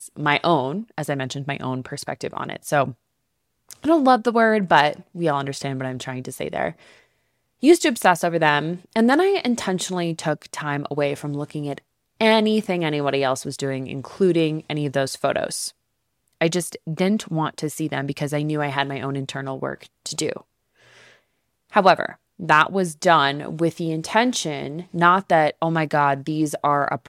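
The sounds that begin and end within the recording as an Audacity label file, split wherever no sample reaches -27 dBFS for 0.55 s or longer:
3.710000	6.700000	sound
7.630000	15.680000	sound
16.410000	20.370000	sound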